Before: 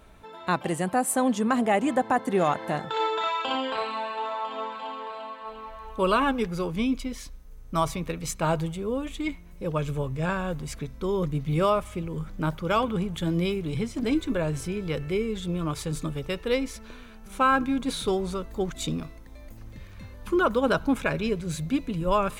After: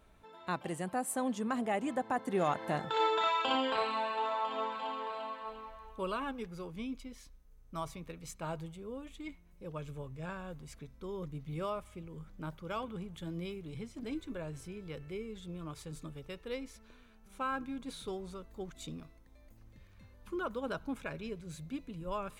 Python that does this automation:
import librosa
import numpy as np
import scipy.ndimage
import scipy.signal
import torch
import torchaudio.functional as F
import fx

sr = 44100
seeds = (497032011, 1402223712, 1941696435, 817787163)

y = fx.gain(x, sr, db=fx.line((2.05, -10.5), (3.07, -3.0), (5.36, -3.0), (6.14, -14.5)))